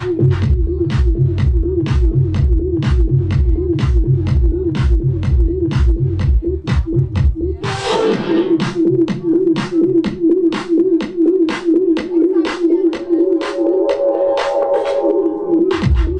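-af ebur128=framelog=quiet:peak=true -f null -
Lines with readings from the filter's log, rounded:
Integrated loudness:
  I:         -15.6 LUFS
  Threshold: -25.6 LUFS
Loudness range:
  LRA:         1.8 LU
  Threshold: -35.6 LUFS
  LRA low:   -16.5 LUFS
  LRA high:  -14.8 LUFS
True peak:
  Peak:       -4.2 dBFS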